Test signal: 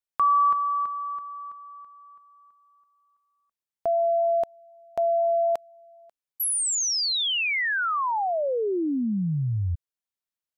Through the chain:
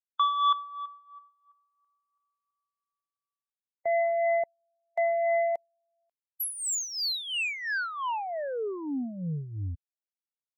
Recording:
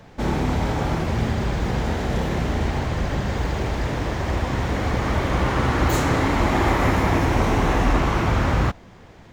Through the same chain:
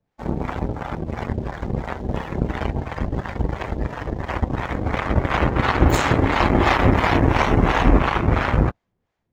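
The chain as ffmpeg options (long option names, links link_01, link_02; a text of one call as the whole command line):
ffmpeg -i in.wav -filter_complex "[0:a]aeval=exprs='0.501*(cos(1*acos(clip(val(0)/0.501,-1,1)))-cos(1*PI/2))+0.0631*(cos(7*acos(clip(val(0)/0.501,-1,1)))-cos(7*PI/2))':channel_layout=same,dynaudnorm=framelen=910:gausssize=5:maxgain=5.5dB,acrossover=split=590[link_01][link_02];[link_01]aeval=exprs='val(0)*(1-0.7/2+0.7/2*cos(2*PI*2.9*n/s))':channel_layout=same[link_03];[link_02]aeval=exprs='val(0)*(1-0.7/2-0.7/2*cos(2*PI*2.9*n/s))':channel_layout=same[link_04];[link_03][link_04]amix=inputs=2:normalize=0,afftdn=noise_reduction=13:noise_floor=-36,volume=4dB" out.wav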